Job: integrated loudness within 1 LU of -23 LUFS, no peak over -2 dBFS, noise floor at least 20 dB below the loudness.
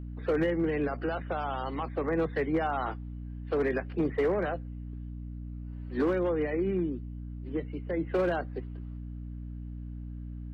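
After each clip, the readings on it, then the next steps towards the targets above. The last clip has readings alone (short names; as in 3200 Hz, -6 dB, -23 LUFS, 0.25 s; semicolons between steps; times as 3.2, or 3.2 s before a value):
clipped 0.5%; flat tops at -21.0 dBFS; hum 60 Hz; harmonics up to 300 Hz; hum level -37 dBFS; loudness -32.5 LUFS; peak -21.0 dBFS; loudness target -23.0 LUFS
-> clip repair -21 dBFS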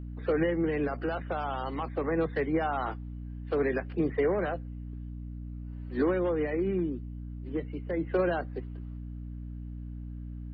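clipped 0.0%; hum 60 Hz; harmonics up to 300 Hz; hum level -37 dBFS
-> notches 60/120/180/240/300 Hz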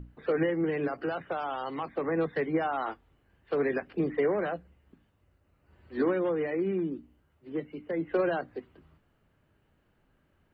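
hum none; loudness -31.0 LUFS; peak -16.5 dBFS; loudness target -23.0 LUFS
-> gain +8 dB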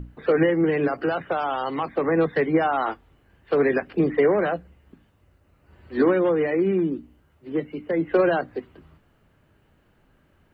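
loudness -23.0 LUFS; peak -8.5 dBFS; noise floor -62 dBFS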